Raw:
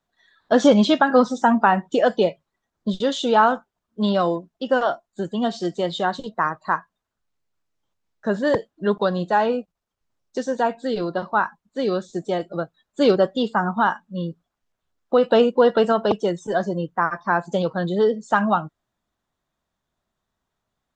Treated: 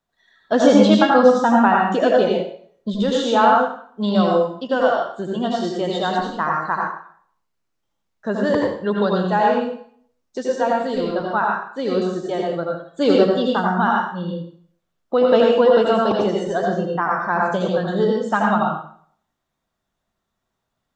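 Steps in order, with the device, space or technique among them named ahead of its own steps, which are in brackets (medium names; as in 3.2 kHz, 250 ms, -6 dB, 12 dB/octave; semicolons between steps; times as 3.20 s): bathroom (reverberation RT60 0.55 s, pre-delay 76 ms, DRR -1.5 dB); trim -1.5 dB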